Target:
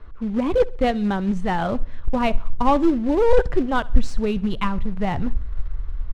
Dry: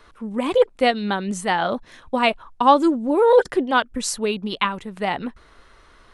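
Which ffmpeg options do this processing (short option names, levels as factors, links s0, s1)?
-filter_complex "[0:a]acontrast=77,asubboost=boost=5.5:cutoff=120,acrusher=bits=3:mode=log:mix=0:aa=0.000001,aemphasis=mode=reproduction:type=riaa,adynamicsmooth=sensitivity=4:basefreq=5600,asplit=2[s0][s1];[s1]aecho=0:1:66|132|198:0.075|0.0322|0.0139[s2];[s0][s2]amix=inputs=2:normalize=0,volume=0.335"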